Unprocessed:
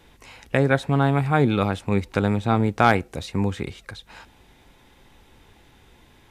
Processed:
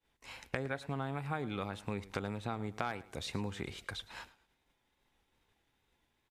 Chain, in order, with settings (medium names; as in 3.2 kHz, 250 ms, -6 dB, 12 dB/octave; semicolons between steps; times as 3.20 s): bass shelf 470 Hz -5.5 dB; expander -43 dBFS; compression 6:1, threshold -33 dBFS, peak gain reduction 19.5 dB; feedback delay 109 ms, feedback 31%, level -18 dB; wow and flutter 53 cents; trim -1.5 dB